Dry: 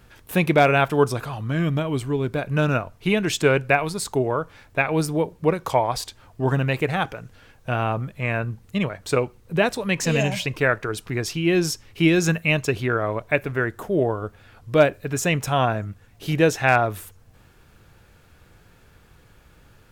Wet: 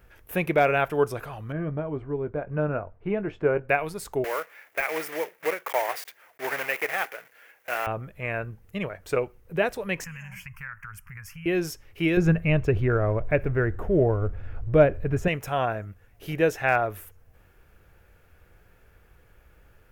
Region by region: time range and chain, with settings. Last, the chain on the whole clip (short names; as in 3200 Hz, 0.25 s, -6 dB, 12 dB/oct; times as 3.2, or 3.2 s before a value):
1.52–3.69 LPF 1200 Hz + doubler 20 ms -12.5 dB
4.24–7.87 block floating point 3-bit + HPF 480 Hz + bell 2000 Hz +8.5 dB 0.7 oct
10.04–11.46 Chebyshev band-stop 150–880 Hz + fixed phaser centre 1600 Hz, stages 4 + compressor 4:1, threshold -30 dBFS
12.17–15.28 G.711 law mismatch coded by mu + RIAA curve playback
whole clip: de-esser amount 40%; graphic EQ 125/250/1000/4000/8000 Hz -8/-8/-6/-11/-9 dB